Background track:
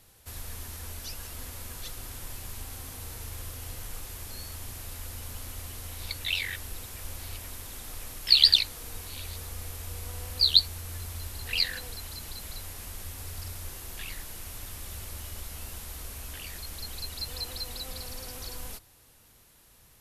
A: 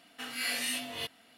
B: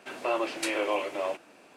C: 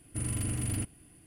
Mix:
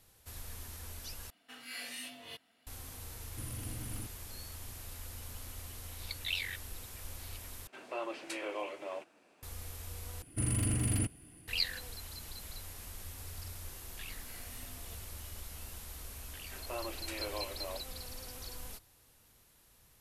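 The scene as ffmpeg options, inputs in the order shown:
-filter_complex "[1:a]asplit=2[a][b];[3:a]asplit=2[c][d];[2:a]asplit=2[e][f];[0:a]volume=-6dB[g];[d]acontrast=68[h];[b]equalizer=f=3.3k:t=o:w=1.7:g=-12[i];[g]asplit=4[j][k][l][m];[j]atrim=end=1.304[n];[a]atrim=end=1.37,asetpts=PTS-STARTPTS,volume=-10.5dB[o];[k]atrim=start=2.666:end=7.674[p];[e]atrim=end=1.76,asetpts=PTS-STARTPTS,volume=-10.5dB[q];[l]atrim=start=9.426:end=10.224[r];[h]atrim=end=1.26,asetpts=PTS-STARTPTS,volume=-5.5dB[s];[m]atrim=start=11.476[t];[c]atrim=end=1.26,asetpts=PTS-STARTPTS,volume=-11dB,afade=t=in:d=0.004:c=hsin,afade=t=out:st=1.256:d=0.004:c=hsin,adelay=3220[u];[i]atrim=end=1.37,asetpts=PTS-STARTPTS,volume=-15dB,afade=t=in:d=0.004:c=hsin,afade=t=out:st=1.366:d=0.004:c=hsin,adelay=13890[v];[f]atrim=end=1.76,asetpts=PTS-STARTPTS,volume=-12.5dB,afade=t=in:d=0.004:c=hsin,afade=t=out:st=1.756:d=0.004:c=hsin,adelay=16450[w];[n][o]acrossfade=d=0.004:c1=hsin:c2=hsin[x];[x][p]acrossfade=d=0.004:c1=hsin:c2=hsin[y];[y][q]acrossfade=d=0.004:c1=hsin:c2=hsin[z];[z][r]acrossfade=d=0.004:c1=hsin:c2=hsin[aa];[aa][s]acrossfade=d=0.004:c1=hsin:c2=hsin[ab];[ab][t]acrossfade=d=0.004:c1=hsin:c2=hsin[ac];[ac][u][v][w]amix=inputs=4:normalize=0"

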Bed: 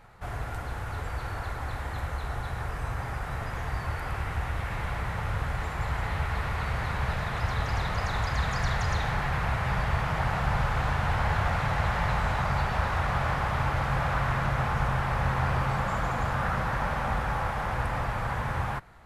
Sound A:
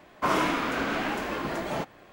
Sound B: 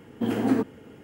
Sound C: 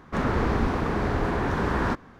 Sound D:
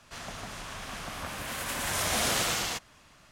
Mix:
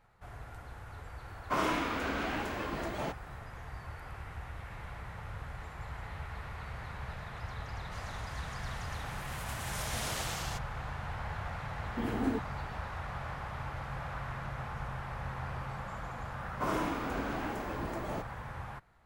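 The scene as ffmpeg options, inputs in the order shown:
-filter_complex "[1:a]asplit=2[a][b];[0:a]volume=-12.5dB[c];[b]equalizer=f=2.9k:t=o:w=2.5:g=-7.5[d];[a]atrim=end=2.12,asetpts=PTS-STARTPTS,volume=-6dB,afade=t=in:d=0.004:c=hsin,afade=t=out:st=2.116:d=0.004:c=hsin,adelay=1280[e];[4:a]atrim=end=3.31,asetpts=PTS-STARTPTS,volume=-10dB,afade=t=in:d=0.004:c=hsin,afade=t=out:st=3.306:d=0.004:c=hsin,adelay=7800[f];[2:a]atrim=end=1.03,asetpts=PTS-STARTPTS,volume=-9.5dB,afade=t=in:d=0.004:c=hsin,afade=t=out:st=1.026:d=0.004:c=hsin,adelay=11760[g];[d]atrim=end=2.12,asetpts=PTS-STARTPTS,volume=-6dB,afade=t=in:d=0.004:c=hsin,afade=t=out:st=2.116:d=0.004:c=hsin,adelay=16380[h];[c][e][f][g][h]amix=inputs=5:normalize=0"

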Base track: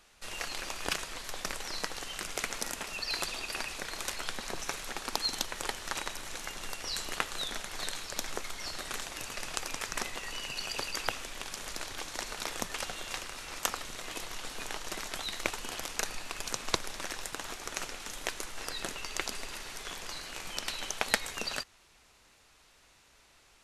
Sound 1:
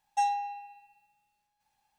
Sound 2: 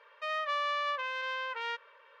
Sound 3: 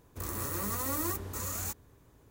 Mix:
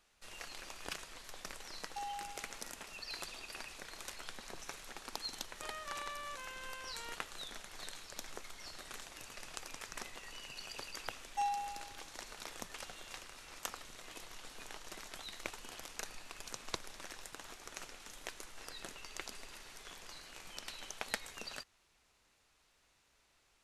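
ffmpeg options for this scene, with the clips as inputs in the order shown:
-filter_complex "[1:a]asplit=2[a][b];[0:a]volume=-10.5dB[c];[a]acompressor=threshold=-29dB:ratio=6:attack=3.2:release=140:knee=1:detection=peak[d];[b]dynaudnorm=f=130:g=3:m=8dB[e];[d]atrim=end=1.98,asetpts=PTS-STARTPTS,volume=-10.5dB,afade=t=in:d=0.004:c=hsin,afade=t=out:st=1.976:d=0.004:c=hsin,adelay=1790[f];[2:a]atrim=end=2.2,asetpts=PTS-STARTPTS,volume=-13dB,afade=t=in:d=0.004:c=hsin,afade=t=out:st=2.196:d=0.004:c=hsin,adelay=5390[g];[e]atrim=end=1.98,asetpts=PTS-STARTPTS,volume=-14dB,afade=t=in:d=0.004:c=hsin,afade=t=out:st=1.976:d=0.004:c=hsin,adelay=11200[h];[c][f][g][h]amix=inputs=4:normalize=0"

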